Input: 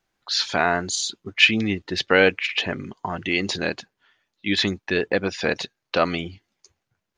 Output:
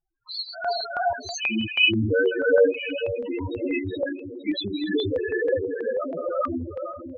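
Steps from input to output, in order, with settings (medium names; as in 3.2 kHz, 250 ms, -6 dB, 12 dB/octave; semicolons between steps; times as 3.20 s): peaking EQ 190 Hz -10 dB 0.23 oct; on a send: echo that smears into a reverb 482 ms, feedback 53%, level -9 dB; on the sum: gated-style reverb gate 450 ms rising, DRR -4.5 dB; 3.73–4.50 s: transient shaper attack +9 dB, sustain -7 dB; loudest bins only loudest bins 4; LFO notch square 3.1 Hz 750–2300 Hz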